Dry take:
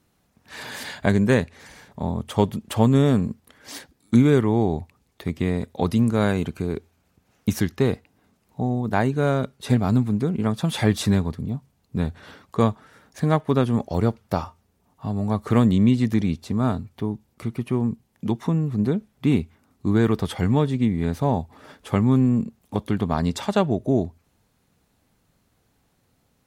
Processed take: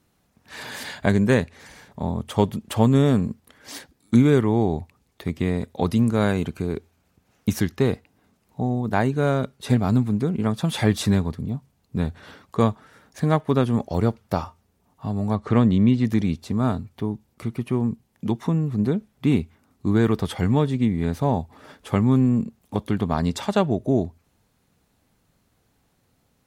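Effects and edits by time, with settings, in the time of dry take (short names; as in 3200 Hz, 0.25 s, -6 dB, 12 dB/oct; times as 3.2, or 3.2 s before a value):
15.35–16.05 air absorption 97 m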